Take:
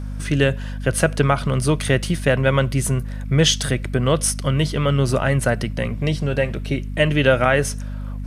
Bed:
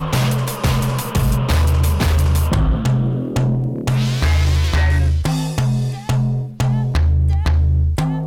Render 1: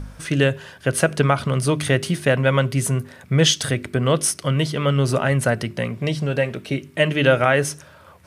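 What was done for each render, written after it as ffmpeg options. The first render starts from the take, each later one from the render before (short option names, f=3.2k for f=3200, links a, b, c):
-af "bandreject=f=50:t=h:w=4,bandreject=f=100:t=h:w=4,bandreject=f=150:t=h:w=4,bandreject=f=200:t=h:w=4,bandreject=f=250:t=h:w=4,bandreject=f=300:t=h:w=4,bandreject=f=350:t=h:w=4,bandreject=f=400:t=h:w=4"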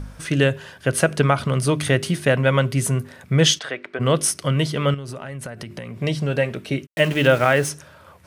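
-filter_complex "[0:a]asplit=3[a][b][c];[a]afade=t=out:st=3.58:d=0.02[d];[b]highpass=510,lowpass=2.8k,afade=t=in:st=3.58:d=0.02,afade=t=out:st=3.99:d=0.02[e];[c]afade=t=in:st=3.99:d=0.02[f];[d][e][f]amix=inputs=3:normalize=0,asettb=1/sr,asplit=3[g][h][i];[g]atrim=end=4.944[j];[h]atrim=start=4.94:end=5.98,asetpts=PTS-STARTPTS,afade=t=in:d=0.004:c=qsin,afade=t=out:st=1.036:d=0.004:c=qsin,acompressor=threshold=-28dB:ratio=16:attack=3.2:release=140:knee=1:detection=peak[k];[i]atrim=start=5.976[l];[j][k]acrossfade=d=0.004:c1=hsin:c2=qsin[m];[m][l]acrossfade=d=0.004:c1=qsin:c2=hsin,asplit=3[n][o][p];[n]afade=t=out:st=6.85:d=0.02[q];[o]aeval=exprs='val(0)*gte(abs(val(0)),0.0282)':c=same,afade=t=in:st=6.85:d=0.02,afade=t=out:st=7.68:d=0.02[r];[p]afade=t=in:st=7.68:d=0.02[s];[q][r][s]amix=inputs=3:normalize=0"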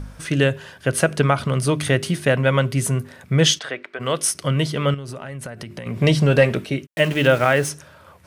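-filter_complex "[0:a]asettb=1/sr,asplit=3[a][b][c];[a]atrim=end=3.834[d];[b]atrim=start=3.83:end=4.35,asetpts=PTS-STARTPTS,afade=t=in:d=0.004:c=qsin,afade=t=out:st=0.516:d=0.004:c=qsin,lowshelf=f=350:g=-11[e];[c]atrim=start=4.346[f];[d][e]acrossfade=d=0.004:c1=hsin:c2=qsin[g];[g][f]acrossfade=d=0.004:c1=qsin:c2=hsin,asettb=1/sr,asplit=3[h][i][j];[h]atrim=end=5.864[k];[i]atrim=start=5.86:end=6.65,asetpts=PTS-STARTPTS,afade=t=in:d=0.004:c=qsin,afade=t=out:st=0.786:d=0.004:c=qsin,acontrast=86[l];[j]atrim=start=6.646[m];[k][l]acrossfade=d=0.004:c1=hsin:c2=qsin[n];[n][m]acrossfade=d=0.004:c1=qsin:c2=hsin"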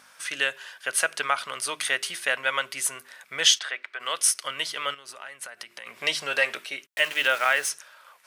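-af "highpass=1.2k"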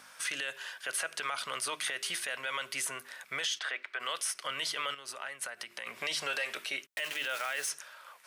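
-filter_complex "[0:a]acrossover=split=430|3100[a][b][c];[a]acompressor=threshold=-49dB:ratio=4[d];[b]acompressor=threshold=-29dB:ratio=4[e];[c]acompressor=threshold=-31dB:ratio=4[f];[d][e][f]amix=inputs=3:normalize=0,alimiter=limit=-23.5dB:level=0:latency=1:release=15"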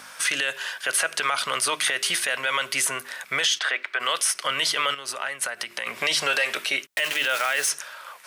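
-af "volume=11dB"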